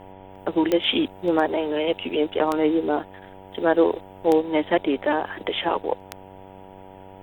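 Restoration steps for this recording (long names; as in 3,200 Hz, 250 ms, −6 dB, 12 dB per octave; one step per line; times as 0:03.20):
click removal
hum removal 95.4 Hz, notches 10
downward expander −36 dBFS, range −21 dB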